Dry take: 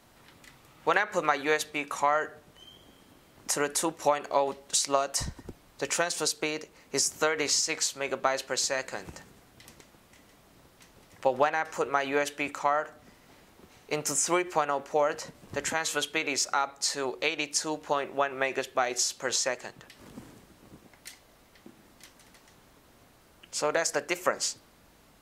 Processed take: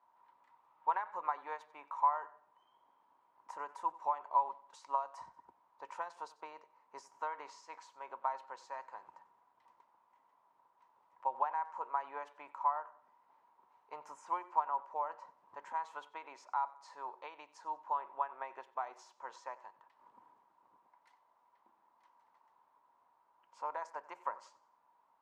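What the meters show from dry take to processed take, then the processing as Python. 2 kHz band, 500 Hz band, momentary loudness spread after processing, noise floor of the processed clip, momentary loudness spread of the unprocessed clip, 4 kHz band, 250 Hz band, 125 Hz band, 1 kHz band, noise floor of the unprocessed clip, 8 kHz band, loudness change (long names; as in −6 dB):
−20.5 dB, −19.5 dB, 18 LU, −73 dBFS, 12 LU, below −30 dB, below −25 dB, below −30 dB, −5.0 dB, −59 dBFS, below −35 dB, −11.0 dB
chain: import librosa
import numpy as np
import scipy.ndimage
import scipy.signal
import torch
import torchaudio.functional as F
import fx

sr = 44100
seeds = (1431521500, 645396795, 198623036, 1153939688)

y = fx.bandpass_q(x, sr, hz=960.0, q=12.0)
y = fx.echo_feedback(y, sr, ms=93, feedback_pct=36, wet_db=-19.0)
y = y * 10.0 ** (3.0 / 20.0)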